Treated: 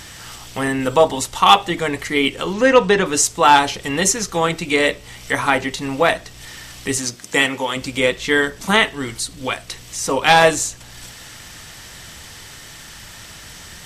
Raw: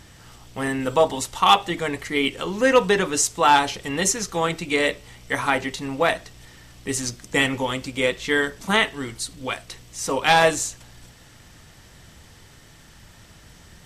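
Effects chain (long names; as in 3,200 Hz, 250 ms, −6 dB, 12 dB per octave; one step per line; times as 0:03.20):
0:02.53–0:03.06: high-frequency loss of the air 56 metres
0:06.97–0:07.75: high-pass filter 170 Hz → 490 Hz 6 dB per octave
one half of a high-frequency compander encoder only
level +4.5 dB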